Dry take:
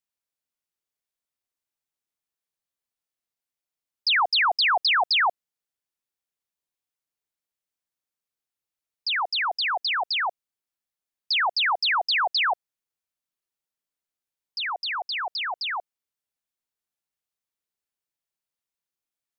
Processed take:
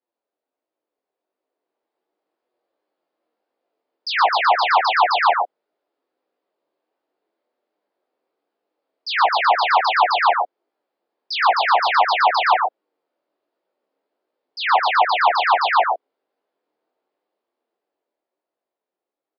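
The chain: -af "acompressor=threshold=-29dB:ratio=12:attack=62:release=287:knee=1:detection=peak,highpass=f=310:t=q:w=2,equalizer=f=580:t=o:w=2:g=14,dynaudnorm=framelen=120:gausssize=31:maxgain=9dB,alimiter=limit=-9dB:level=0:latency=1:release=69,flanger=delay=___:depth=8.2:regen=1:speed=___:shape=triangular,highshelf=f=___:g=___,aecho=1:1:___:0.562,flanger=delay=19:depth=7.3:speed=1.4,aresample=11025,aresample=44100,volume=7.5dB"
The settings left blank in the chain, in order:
7.9, 0.4, 2100, -10.5, 119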